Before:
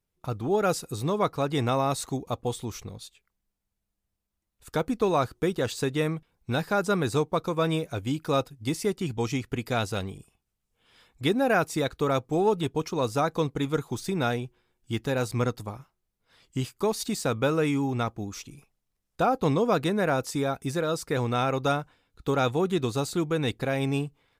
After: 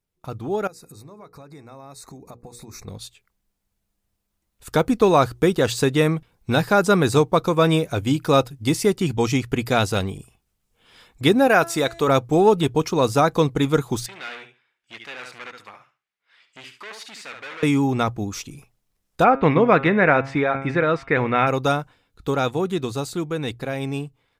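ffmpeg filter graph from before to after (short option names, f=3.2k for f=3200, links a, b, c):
-filter_complex "[0:a]asettb=1/sr,asplit=3[a][b][c];[a]atrim=end=0.674[d];[b]atrim=start=0.67:end=2.88,asetpts=PTS-STARTPTS,afade=t=in:d=0.004:c=qsin,afade=t=out:st=2.206:d=0.004:c=qsin,asuperstop=centerf=3100:order=8:qfactor=2.8,acompressor=threshold=-39dB:ratio=16:attack=3.2:release=140:knee=1:detection=peak,bandreject=f=60:t=h:w=6,bandreject=f=120:t=h:w=6,bandreject=f=180:t=h:w=6,bandreject=f=240:t=h:w=6,bandreject=f=300:t=h:w=6,bandreject=f=360:t=h:w=6,bandreject=f=420:t=h:w=6,bandreject=f=480:t=h:w=6[e];[c]atrim=start=2.876[f];[d][e]acrossfade=d=0.004:c1=hsin:c2=qsin[g];[g][f]acrossfade=d=0.004:c1=qsin:c2=hsin,asettb=1/sr,asplit=3[h][i][j];[h]atrim=end=11.474[k];[i]atrim=start=11.47:end=12.08,asetpts=PTS-STARTPTS,afade=t=in:d=0.004:c=qsin,afade=t=out:st=0.606:d=0.004:c=qsin,lowshelf=f=260:g=-8.5,bandreject=f=336.7:t=h:w=4,bandreject=f=673.4:t=h:w=4,bandreject=f=1.0101k:t=h:w=4,bandreject=f=1.3468k:t=h:w=4,bandreject=f=1.6835k:t=h:w=4,bandreject=f=2.0202k:t=h:w=4,bandreject=f=2.3569k:t=h:w=4,bandreject=f=2.6936k:t=h:w=4,bandreject=f=3.0303k:t=h:w=4,bandreject=f=3.367k:t=h:w=4,bandreject=f=3.7037k:t=h:w=4,bandreject=f=4.0404k:t=h:w=4,bandreject=f=4.3771k:t=h:w=4,bandreject=f=4.7138k:t=h:w=4,bandreject=f=5.0505k:t=h:w=4,bandreject=f=5.3872k:t=h:w=4,bandreject=f=5.7239k:t=h:w=4,bandreject=f=6.0606k:t=h:w=4,bandreject=f=6.3973k:t=h:w=4,bandreject=f=6.734k:t=h:w=4,bandreject=f=7.0707k:t=h:w=4,bandreject=f=7.4074k:t=h:w=4,bandreject=f=7.7441k:t=h:w=4,bandreject=f=8.0808k:t=h:w=4,bandreject=f=8.4175k:t=h:w=4,bandreject=f=8.7542k:t=h:w=4,bandreject=f=9.0909k:t=h:w=4,bandreject=f=9.4276k:t=h:w=4,bandreject=f=9.7643k:t=h:w=4,acompressor=mode=upward:threshold=-37dB:ratio=2.5:attack=3.2:release=140:knee=2.83:detection=peak[l];[j]atrim=start=12.076[m];[k][l]acrossfade=d=0.004:c1=hsin:c2=qsin[n];[n][m]acrossfade=d=0.004:c1=qsin:c2=hsin,asettb=1/sr,asplit=3[o][p][q];[o]atrim=end=14.064[r];[p]atrim=start=14.06:end=17.63,asetpts=PTS-STARTPTS,afade=t=in:d=0.004:c=qsin,afade=t=out:st=3.566:d=0.004:c=qsin,aecho=1:1:71|142|213:0.316|0.0569|0.0102,atrim=end_sample=157437,asoftclip=type=hard:threshold=-31dB,bandpass=f=2.1k:t=q:w=1.6[s];[q]atrim=start=17.626[t];[r][s]acrossfade=d=0.004:c1=hsin:c2=qsin[u];[u][t]acrossfade=d=0.004:c1=qsin:c2=hsin,asettb=1/sr,asplit=3[v][w][x];[v]atrim=end=19.244[y];[w]atrim=start=19.24:end=21.47,asetpts=PTS-STARTPTS,afade=t=in:d=0.004:c=qsin,afade=t=out:st=2.226:d=0.004:c=qsin,lowpass=f=2.1k:t=q:w=3.2,bandreject=f=135.7:t=h:w=4,bandreject=f=271.4:t=h:w=4,bandreject=f=407.1:t=h:w=4,bandreject=f=542.8:t=h:w=4,bandreject=f=678.5:t=h:w=4,bandreject=f=814.2:t=h:w=4,bandreject=f=949.9:t=h:w=4,bandreject=f=1.0856k:t=h:w=4,bandreject=f=1.2213k:t=h:w=4,bandreject=f=1.357k:t=h:w=4,bandreject=f=1.4927k:t=h:w=4,bandreject=f=1.6284k:t=h:w=4,bandreject=f=1.7641k:t=h:w=4,bandreject=f=1.8998k:t=h:w=4,bandreject=f=2.0355k:t=h:w=4,bandreject=f=2.1712k:t=h:w=4,bandreject=f=2.3069k:t=h:w=4,bandreject=f=2.4426k:t=h:w=4,bandreject=f=2.5783k:t=h:w=4,bandreject=f=2.714k:t=h:w=4,bandreject=f=2.8497k:t=h:w=4,bandreject=f=2.9854k:t=h:w=4,bandreject=f=3.1211k:t=h:w=4,bandreject=f=3.2568k:t=h:w=4,bandreject=f=3.3925k:t=h:w=4,bandreject=f=3.5282k:t=h:w=4,bandreject=f=3.6639k:t=h:w=4[z];[x]atrim=start=21.466[aa];[y][z]acrossfade=d=0.004:c1=hsin:c2=qsin[ab];[ab][aa]acrossfade=d=0.004:c1=qsin:c2=hsin,bandreject=f=60:t=h:w=6,bandreject=f=120:t=h:w=6,dynaudnorm=f=330:g=17:m=9dB"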